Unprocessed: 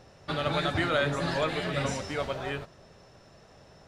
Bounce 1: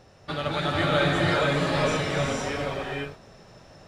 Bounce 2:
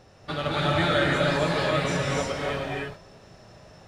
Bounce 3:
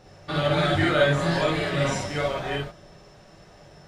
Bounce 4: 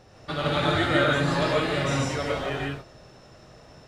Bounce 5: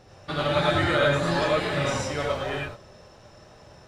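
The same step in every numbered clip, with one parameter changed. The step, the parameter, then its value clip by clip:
gated-style reverb, gate: 530 ms, 340 ms, 80 ms, 190 ms, 130 ms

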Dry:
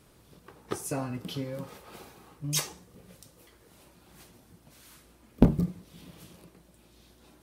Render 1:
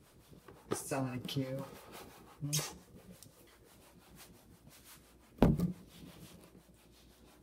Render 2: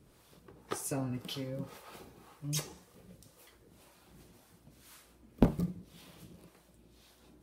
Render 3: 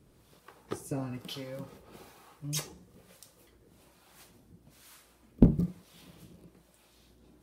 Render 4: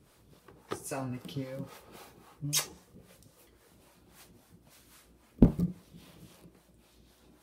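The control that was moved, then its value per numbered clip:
harmonic tremolo, rate: 5.8 Hz, 1.9 Hz, 1.1 Hz, 3.7 Hz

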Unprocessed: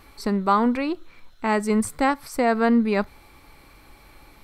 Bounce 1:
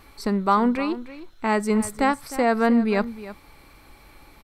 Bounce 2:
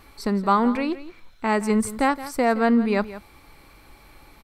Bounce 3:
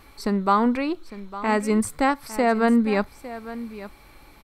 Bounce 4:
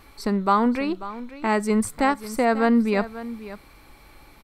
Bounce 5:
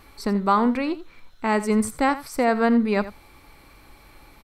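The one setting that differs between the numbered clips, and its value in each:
delay, time: 308 ms, 170 ms, 855 ms, 540 ms, 84 ms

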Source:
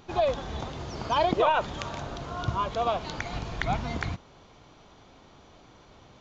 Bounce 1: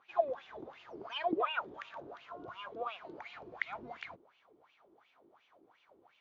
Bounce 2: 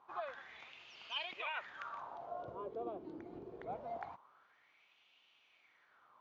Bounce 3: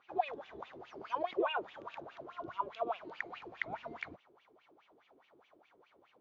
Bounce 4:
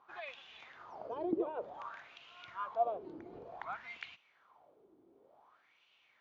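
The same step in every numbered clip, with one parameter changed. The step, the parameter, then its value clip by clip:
wah-wah, rate: 2.8 Hz, 0.24 Hz, 4.8 Hz, 0.55 Hz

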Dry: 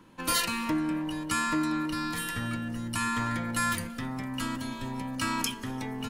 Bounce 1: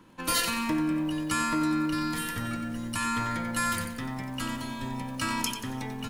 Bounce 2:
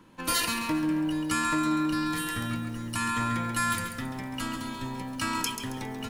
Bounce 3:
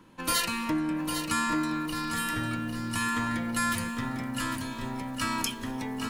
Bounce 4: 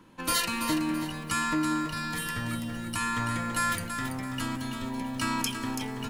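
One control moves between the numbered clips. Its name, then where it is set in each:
bit-crushed delay, time: 91 ms, 136 ms, 801 ms, 332 ms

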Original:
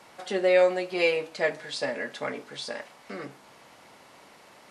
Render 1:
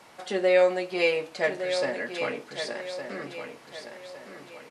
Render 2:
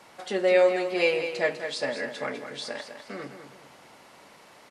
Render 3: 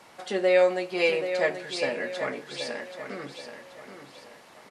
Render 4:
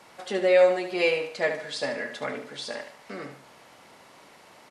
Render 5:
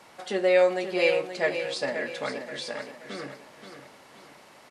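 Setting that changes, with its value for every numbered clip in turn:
feedback delay, time: 1162 ms, 201 ms, 780 ms, 73 ms, 528 ms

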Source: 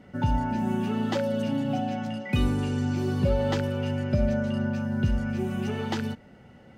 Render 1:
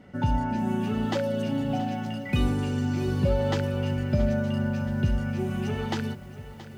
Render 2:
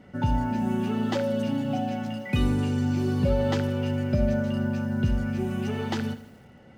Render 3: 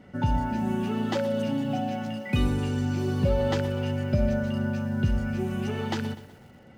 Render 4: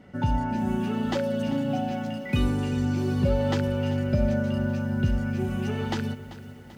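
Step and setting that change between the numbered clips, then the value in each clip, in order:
bit-crushed delay, time: 675 ms, 81 ms, 124 ms, 389 ms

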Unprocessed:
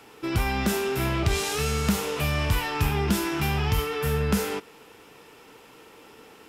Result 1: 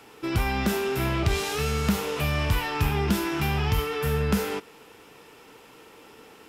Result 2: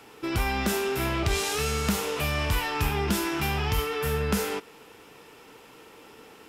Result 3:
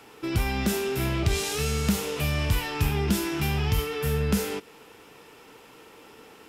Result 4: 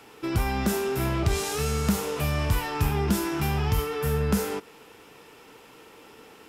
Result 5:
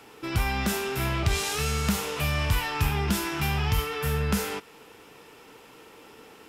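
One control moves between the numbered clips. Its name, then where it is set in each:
dynamic bell, frequency: 8.3 kHz, 130 Hz, 1.1 kHz, 2.8 kHz, 340 Hz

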